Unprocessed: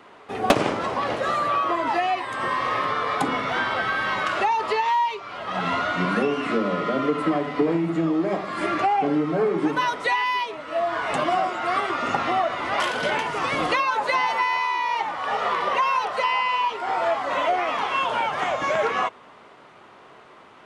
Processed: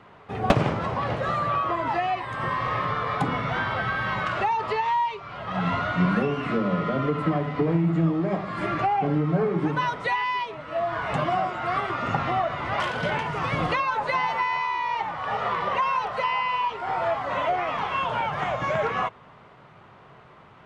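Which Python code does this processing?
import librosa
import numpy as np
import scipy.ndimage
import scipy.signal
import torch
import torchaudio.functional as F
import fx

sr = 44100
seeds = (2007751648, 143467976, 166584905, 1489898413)

y = fx.lowpass(x, sr, hz=2700.0, slope=6)
y = fx.low_shelf_res(y, sr, hz=200.0, db=9.5, q=1.5)
y = F.gain(torch.from_numpy(y), -1.5).numpy()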